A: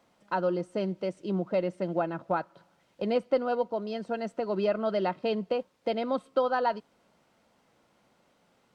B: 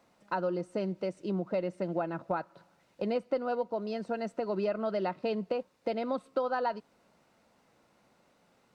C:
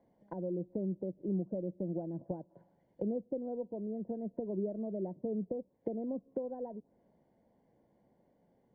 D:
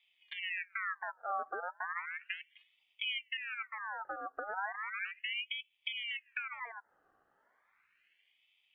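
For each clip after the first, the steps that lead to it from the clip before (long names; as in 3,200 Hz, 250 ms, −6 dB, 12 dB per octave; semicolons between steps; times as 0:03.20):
notch filter 3,200 Hz, Q 13; downward compressor 2 to 1, threshold −30 dBFS, peak gain reduction 6 dB
treble cut that deepens with the level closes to 420 Hz, closed at −32 dBFS; moving average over 34 samples
ring modulator whose carrier an LFO sweeps 1,900 Hz, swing 50%, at 0.35 Hz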